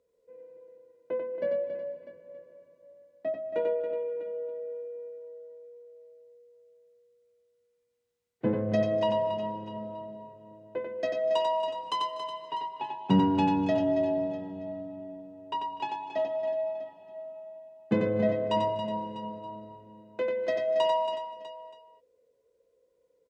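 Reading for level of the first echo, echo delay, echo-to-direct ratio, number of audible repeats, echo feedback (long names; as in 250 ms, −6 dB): −4.0 dB, 92 ms, −2.0 dB, 7, repeats not evenly spaced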